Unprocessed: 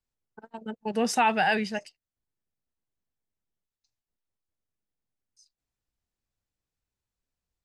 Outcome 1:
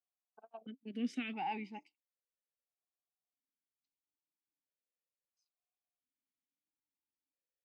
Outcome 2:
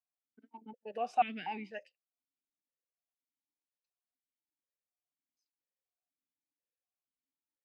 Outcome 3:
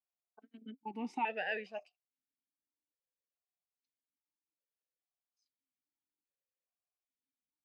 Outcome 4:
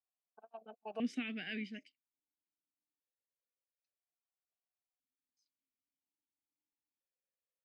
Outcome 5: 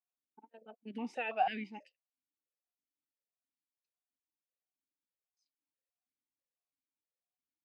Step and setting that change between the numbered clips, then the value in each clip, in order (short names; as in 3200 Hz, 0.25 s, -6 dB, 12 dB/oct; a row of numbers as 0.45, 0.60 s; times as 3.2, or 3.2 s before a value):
vowel sequencer, rate: 1.5, 4.1, 2.4, 1, 6.1 Hz